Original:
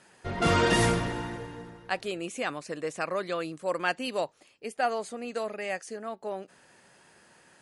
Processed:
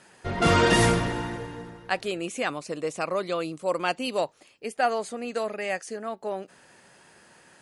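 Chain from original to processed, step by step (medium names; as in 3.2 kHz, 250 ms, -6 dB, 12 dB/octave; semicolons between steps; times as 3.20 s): 2.48–4.18 s: peaking EQ 1.7 kHz -9 dB 0.36 oct; trim +3.5 dB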